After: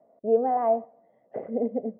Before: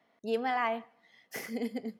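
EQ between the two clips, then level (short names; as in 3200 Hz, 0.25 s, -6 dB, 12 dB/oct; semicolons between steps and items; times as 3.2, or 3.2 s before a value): synth low-pass 600 Hz, resonance Q 4.9; air absorption 280 m; +4.0 dB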